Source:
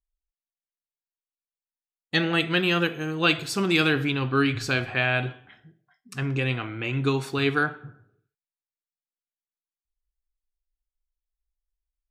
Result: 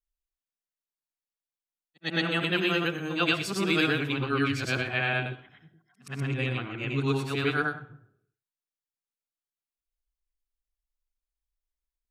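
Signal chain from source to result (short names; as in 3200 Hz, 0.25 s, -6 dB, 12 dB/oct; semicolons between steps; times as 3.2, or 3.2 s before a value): short-time reversal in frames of 0.249 s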